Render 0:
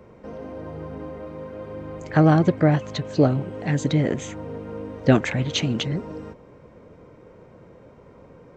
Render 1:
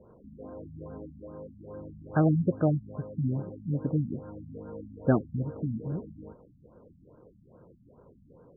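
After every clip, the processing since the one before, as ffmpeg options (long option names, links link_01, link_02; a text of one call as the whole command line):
ffmpeg -i in.wav -af "afftfilt=real='re*lt(b*sr/1024,250*pow(1700/250,0.5+0.5*sin(2*PI*2.4*pts/sr)))':imag='im*lt(b*sr/1024,250*pow(1700/250,0.5+0.5*sin(2*PI*2.4*pts/sr)))':win_size=1024:overlap=0.75,volume=-7dB" out.wav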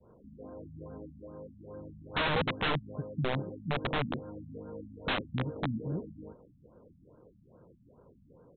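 ffmpeg -i in.wav -af "adynamicequalizer=threshold=0.0126:dfrequency=380:dqfactor=0.81:tfrequency=380:tqfactor=0.81:attack=5:release=100:ratio=0.375:range=2:mode=boostabove:tftype=bell,aresample=8000,aeval=exprs='(mod(11.9*val(0)+1,2)-1)/11.9':channel_layout=same,aresample=44100,volume=-3dB" out.wav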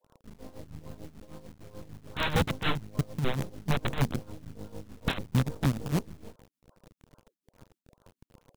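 ffmpeg -i in.wav -filter_complex "[0:a]acrossover=split=630[link_01][link_02];[link_01]acrusher=bits=6:dc=4:mix=0:aa=0.000001[link_03];[link_03][link_02]amix=inputs=2:normalize=0,bass=frequency=250:gain=9,treble=frequency=4000:gain=4,tremolo=f=6.7:d=0.76,volume=2dB" out.wav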